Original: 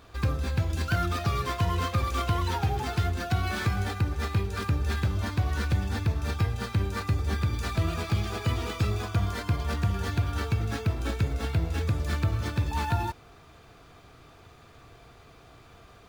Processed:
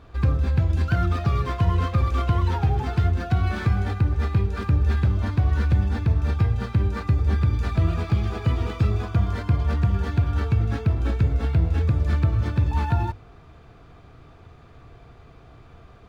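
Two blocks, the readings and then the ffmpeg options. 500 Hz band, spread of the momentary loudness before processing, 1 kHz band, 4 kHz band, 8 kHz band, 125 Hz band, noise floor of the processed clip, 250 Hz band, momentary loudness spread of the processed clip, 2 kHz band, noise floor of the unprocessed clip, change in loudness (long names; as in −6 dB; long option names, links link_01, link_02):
+2.5 dB, 2 LU, +1.0 dB, −4.0 dB, can't be measured, +6.5 dB, −49 dBFS, +5.0 dB, 2 LU, −0.5 dB, −53 dBFS, +6.0 dB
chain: -af "lowpass=frequency=2200:poles=1,lowshelf=frequency=180:gain=8,bandreject=frequency=50:width_type=h:width=6,bandreject=frequency=100:width_type=h:width=6,volume=1.5dB"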